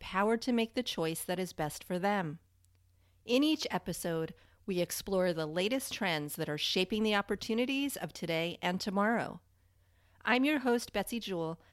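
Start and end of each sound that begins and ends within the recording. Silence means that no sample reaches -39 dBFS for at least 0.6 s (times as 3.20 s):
3.28–9.35 s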